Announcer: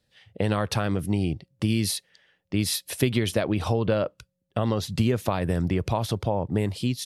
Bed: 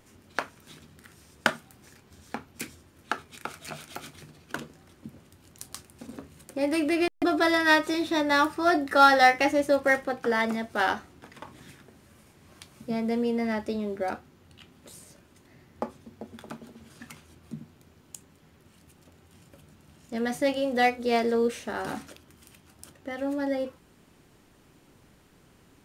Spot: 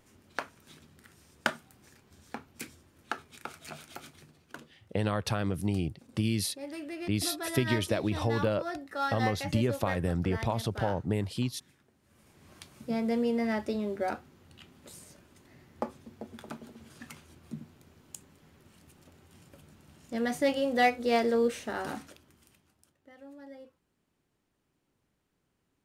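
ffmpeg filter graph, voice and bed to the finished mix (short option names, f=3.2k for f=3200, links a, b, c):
-filter_complex "[0:a]adelay=4550,volume=-5dB[a];[1:a]volume=8dB,afade=t=out:st=3.92:d=0.83:silence=0.334965,afade=t=in:st=12.01:d=0.44:silence=0.223872,afade=t=out:st=21.64:d=1.23:silence=0.125893[b];[a][b]amix=inputs=2:normalize=0"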